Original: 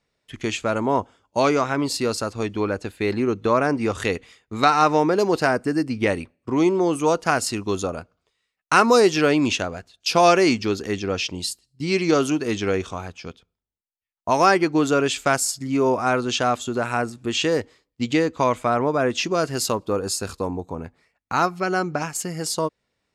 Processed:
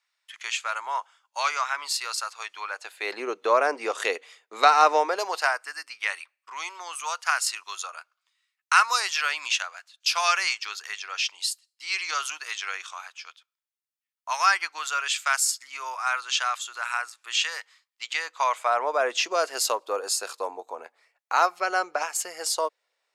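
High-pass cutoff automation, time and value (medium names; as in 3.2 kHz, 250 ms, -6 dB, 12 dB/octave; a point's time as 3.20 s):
high-pass 24 dB/octave
2.64 s 1 kHz
3.23 s 480 Hz
4.91 s 480 Hz
5.76 s 1.1 kHz
18.07 s 1.1 kHz
18.99 s 540 Hz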